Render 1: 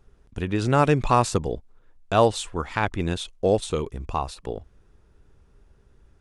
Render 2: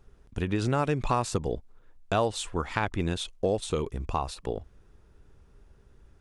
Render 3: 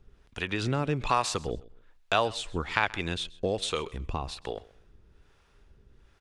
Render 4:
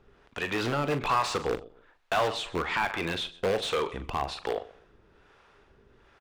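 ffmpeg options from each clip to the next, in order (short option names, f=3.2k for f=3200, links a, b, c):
-af "acompressor=threshold=-24dB:ratio=3"
-filter_complex "[0:a]acrossover=split=4100[a][b];[a]crystalizer=i=7:c=0[c];[c][b]amix=inputs=2:normalize=0,acrossover=split=470[d][e];[d]aeval=exprs='val(0)*(1-0.7/2+0.7/2*cos(2*PI*1.2*n/s))':c=same[f];[e]aeval=exprs='val(0)*(1-0.7/2-0.7/2*cos(2*PI*1.2*n/s))':c=same[g];[f][g]amix=inputs=2:normalize=0,aecho=1:1:130|260:0.0841|0.0202"
-filter_complex "[0:a]asplit=2[a][b];[b]aeval=exprs='(mod(14.1*val(0)+1,2)-1)/14.1':c=same,volume=-3.5dB[c];[a][c]amix=inputs=2:normalize=0,asplit=2[d][e];[e]highpass=f=720:p=1,volume=21dB,asoftclip=type=tanh:threshold=-5.5dB[f];[d][f]amix=inputs=2:normalize=0,lowpass=f=1.3k:p=1,volume=-6dB,asplit=2[g][h];[h]adelay=42,volume=-11dB[i];[g][i]amix=inputs=2:normalize=0,volume=-7.5dB"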